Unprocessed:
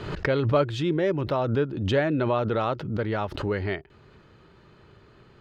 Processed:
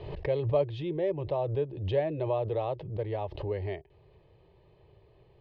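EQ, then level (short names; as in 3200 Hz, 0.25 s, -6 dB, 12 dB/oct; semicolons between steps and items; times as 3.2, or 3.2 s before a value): air absorption 320 m; fixed phaser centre 580 Hz, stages 4; -2.0 dB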